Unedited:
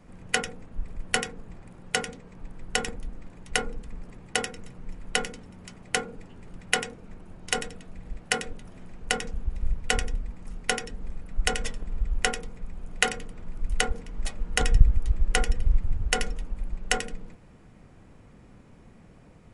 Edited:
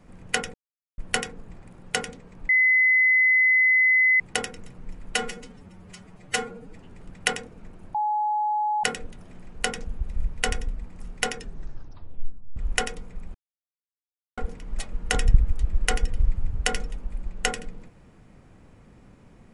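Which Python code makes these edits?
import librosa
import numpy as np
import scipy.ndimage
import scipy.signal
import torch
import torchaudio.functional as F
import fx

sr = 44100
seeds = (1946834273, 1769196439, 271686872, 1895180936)

y = fx.edit(x, sr, fx.silence(start_s=0.54, length_s=0.44),
    fx.bleep(start_s=2.49, length_s=1.71, hz=2030.0, db=-15.5),
    fx.stretch_span(start_s=5.15, length_s=1.07, factor=1.5),
    fx.bleep(start_s=7.41, length_s=0.89, hz=845.0, db=-21.5),
    fx.tape_stop(start_s=10.85, length_s=1.18),
    fx.silence(start_s=12.81, length_s=1.03), tone=tone)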